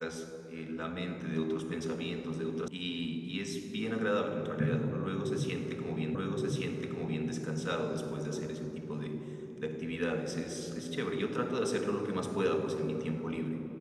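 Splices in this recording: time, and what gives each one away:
0:02.68: cut off before it has died away
0:06.15: the same again, the last 1.12 s

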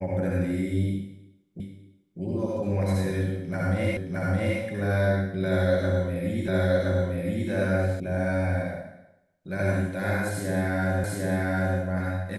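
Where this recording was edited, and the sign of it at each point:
0:01.60: the same again, the last 0.6 s
0:03.97: the same again, the last 0.62 s
0:06.48: the same again, the last 1.02 s
0:08.00: cut off before it has died away
0:11.04: the same again, the last 0.75 s

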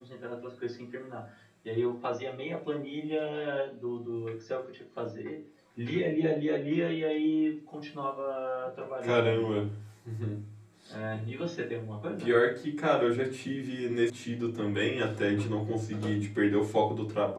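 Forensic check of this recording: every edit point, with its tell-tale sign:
0:14.10: cut off before it has died away

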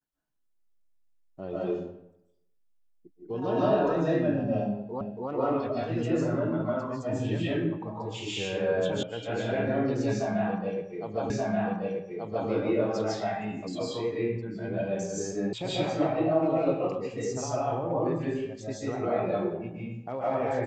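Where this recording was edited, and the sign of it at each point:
0:05.01: the same again, the last 0.28 s
0:09.03: cut off before it has died away
0:11.30: the same again, the last 1.18 s
0:15.53: cut off before it has died away

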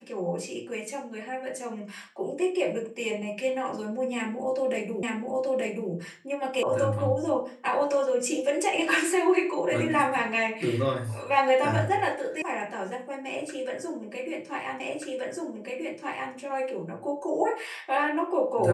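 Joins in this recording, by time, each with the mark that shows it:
0:05.03: the same again, the last 0.88 s
0:06.63: cut off before it has died away
0:12.42: cut off before it has died away
0:14.80: the same again, the last 1.53 s

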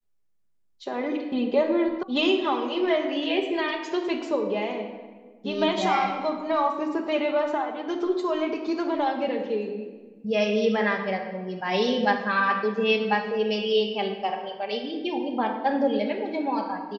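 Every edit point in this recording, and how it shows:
0:02.03: cut off before it has died away

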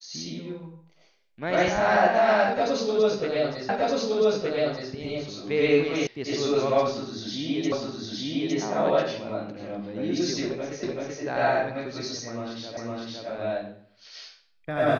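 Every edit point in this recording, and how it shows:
0:03.69: the same again, the last 1.22 s
0:06.07: cut off before it has died away
0:07.72: the same again, the last 0.86 s
0:10.83: the same again, the last 0.38 s
0:12.77: the same again, the last 0.51 s

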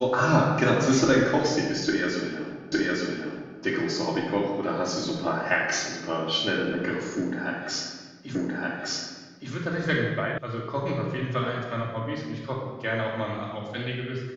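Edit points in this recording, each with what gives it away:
0:02.72: the same again, the last 0.86 s
0:08.35: the same again, the last 1.17 s
0:10.38: cut off before it has died away

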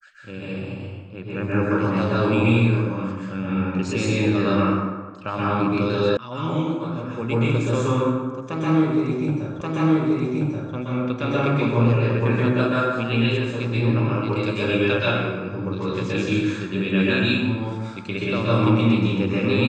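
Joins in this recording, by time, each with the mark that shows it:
0:06.17: cut off before it has died away
0:09.61: the same again, the last 1.13 s

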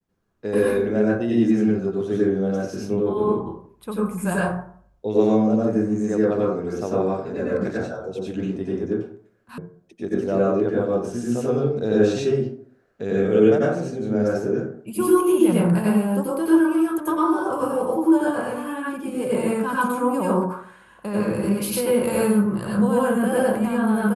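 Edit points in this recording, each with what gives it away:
0:09.58: cut off before it has died away

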